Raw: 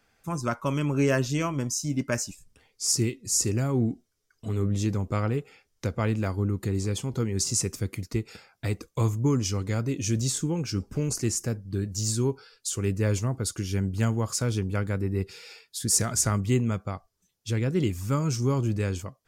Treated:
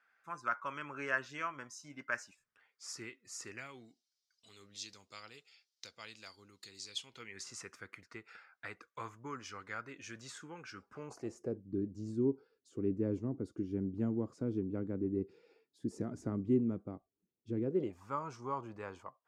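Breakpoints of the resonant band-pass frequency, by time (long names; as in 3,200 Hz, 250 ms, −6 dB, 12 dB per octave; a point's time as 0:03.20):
resonant band-pass, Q 2.6
0:03.47 1,500 Hz
0:03.89 4,400 Hz
0:06.88 4,400 Hz
0:07.51 1,500 Hz
0:10.85 1,500 Hz
0:11.63 300 Hz
0:17.60 300 Hz
0:18.04 970 Hz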